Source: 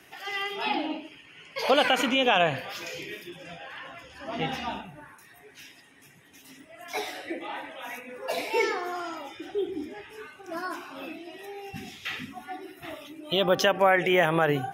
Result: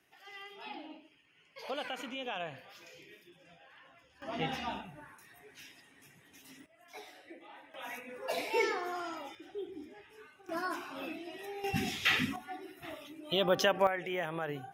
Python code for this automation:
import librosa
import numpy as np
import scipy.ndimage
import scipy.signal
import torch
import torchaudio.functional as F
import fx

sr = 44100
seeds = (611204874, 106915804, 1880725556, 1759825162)

y = fx.gain(x, sr, db=fx.steps((0.0, -17.0), (4.22, -5.0), (6.66, -17.0), (7.74, -5.0), (9.35, -12.0), (10.49, -2.5), (11.64, 6.0), (12.36, -5.5), (13.87, -14.0)))